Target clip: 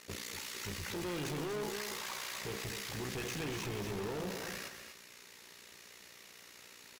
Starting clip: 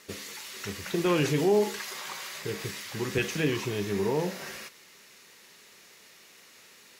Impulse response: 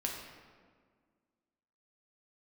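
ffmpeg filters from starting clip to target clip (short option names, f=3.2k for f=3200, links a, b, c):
-filter_complex "[0:a]equalizer=f=73:t=o:w=0.63:g=10,tremolo=f=60:d=0.889,asoftclip=type=hard:threshold=-39dB,asplit=2[a][b];[b]aecho=0:1:242:0.398[c];[a][c]amix=inputs=2:normalize=0,volume=2dB"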